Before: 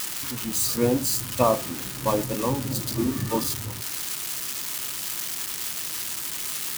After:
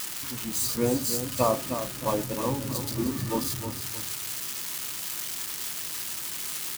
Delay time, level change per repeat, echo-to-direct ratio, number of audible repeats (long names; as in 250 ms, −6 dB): 309 ms, −9.5 dB, −8.5 dB, 2